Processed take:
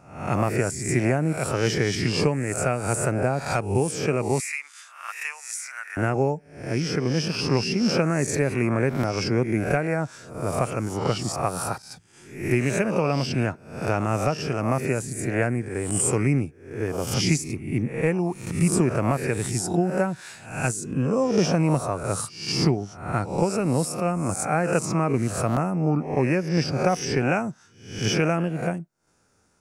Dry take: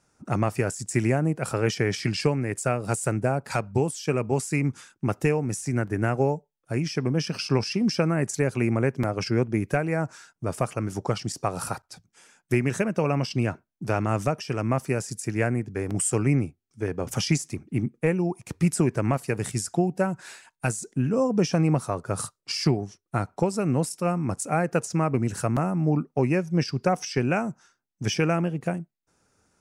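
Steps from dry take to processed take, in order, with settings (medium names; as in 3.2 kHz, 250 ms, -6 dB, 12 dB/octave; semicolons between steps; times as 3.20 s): reverse spectral sustain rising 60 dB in 0.57 s; 4.40–5.97 s: high-pass 1.2 kHz 24 dB/octave; 14.89–15.43 s: peaking EQ 5.3 kHz -10.5 dB 0.37 oct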